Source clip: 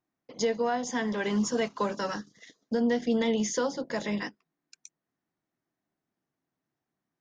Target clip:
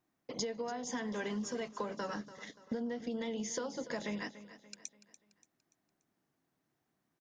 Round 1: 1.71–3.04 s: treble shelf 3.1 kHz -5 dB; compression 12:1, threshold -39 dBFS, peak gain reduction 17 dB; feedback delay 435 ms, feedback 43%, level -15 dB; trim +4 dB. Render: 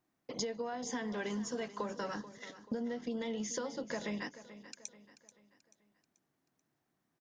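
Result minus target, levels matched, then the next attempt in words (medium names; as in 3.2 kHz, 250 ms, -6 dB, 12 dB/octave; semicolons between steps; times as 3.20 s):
echo 146 ms late
1.71–3.04 s: treble shelf 3.1 kHz -5 dB; compression 12:1, threshold -39 dBFS, peak gain reduction 17 dB; feedback delay 289 ms, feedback 43%, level -15 dB; trim +4 dB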